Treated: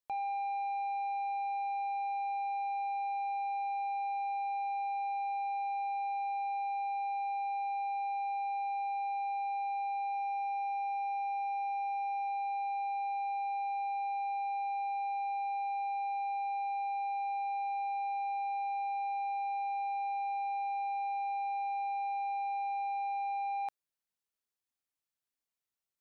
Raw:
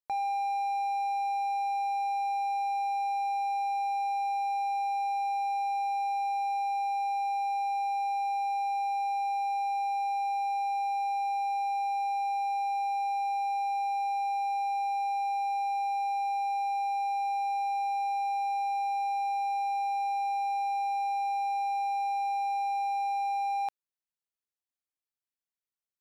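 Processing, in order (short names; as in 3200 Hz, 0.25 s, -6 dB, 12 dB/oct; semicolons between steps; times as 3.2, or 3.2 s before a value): 10.14–12.28 high shelf 2100 Hz +7 dB; soft clip -34 dBFS, distortion -12 dB; gain +1 dB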